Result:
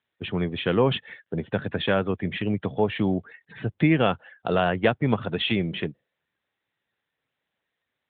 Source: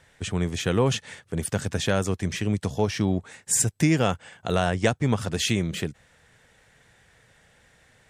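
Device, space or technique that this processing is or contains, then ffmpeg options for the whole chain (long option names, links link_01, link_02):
mobile call with aggressive noise cancelling: -af "highpass=frequency=180:poles=1,afftdn=noise_reduction=34:noise_floor=-43,volume=3dB" -ar 8000 -c:a libopencore_amrnb -b:a 12200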